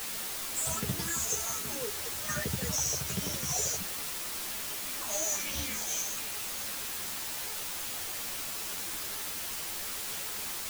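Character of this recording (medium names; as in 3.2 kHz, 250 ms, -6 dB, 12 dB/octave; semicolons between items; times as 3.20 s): phasing stages 4, 1.3 Hz, lowest notch 210–1500 Hz; a quantiser's noise floor 6-bit, dither triangular; a shimmering, thickened sound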